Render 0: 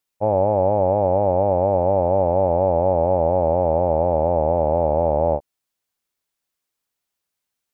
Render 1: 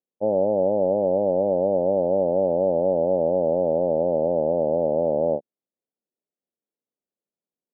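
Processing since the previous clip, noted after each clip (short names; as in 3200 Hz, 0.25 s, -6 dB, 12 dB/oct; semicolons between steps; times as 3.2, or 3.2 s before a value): Chebyshev band-pass 190–540 Hz, order 2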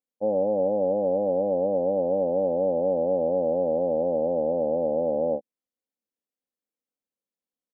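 comb 3.9 ms, depth 51%; gain -4.5 dB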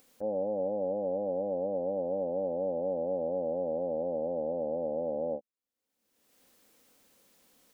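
upward compressor, threshold -29 dBFS; gain -8 dB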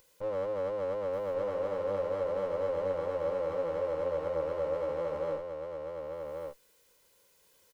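minimum comb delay 2 ms; echo 1.134 s -5 dB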